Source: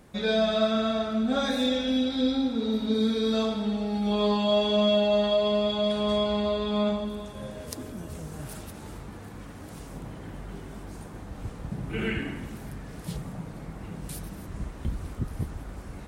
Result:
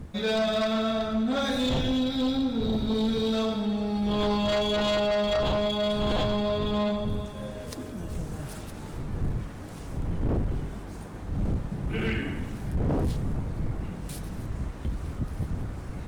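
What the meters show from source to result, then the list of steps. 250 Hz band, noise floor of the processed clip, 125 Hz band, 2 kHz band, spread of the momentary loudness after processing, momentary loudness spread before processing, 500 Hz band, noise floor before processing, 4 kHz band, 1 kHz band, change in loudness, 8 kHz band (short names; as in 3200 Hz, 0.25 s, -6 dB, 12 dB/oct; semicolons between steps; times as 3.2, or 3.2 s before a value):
-0.5 dB, -39 dBFS, +5.0 dB, +1.5 dB, 12 LU, 18 LU, -1.5 dB, -42 dBFS, -1.5 dB, +0.5 dB, -2.0 dB, 0.0 dB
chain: median filter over 3 samples; wind noise 120 Hz -30 dBFS; sine folder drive 6 dB, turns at -13 dBFS; gain -8.5 dB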